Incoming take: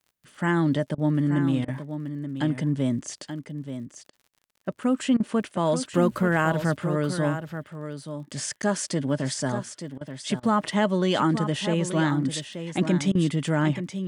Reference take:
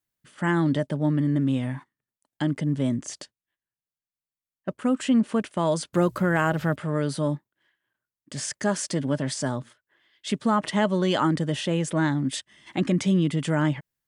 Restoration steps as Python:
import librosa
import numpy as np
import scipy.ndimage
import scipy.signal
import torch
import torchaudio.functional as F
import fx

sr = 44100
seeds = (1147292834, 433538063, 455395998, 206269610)

y = fx.fix_declick_ar(x, sr, threshold=6.5)
y = fx.fix_interpolate(y, sr, at_s=(8.62,), length_ms=9.3)
y = fx.fix_interpolate(y, sr, at_s=(0.95, 1.65, 4.1, 5.17, 9.98, 10.4, 13.12), length_ms=29.0)
y = fx.fix_echo_inverse(y, sr, delay_ms=880, level_db=-9.5)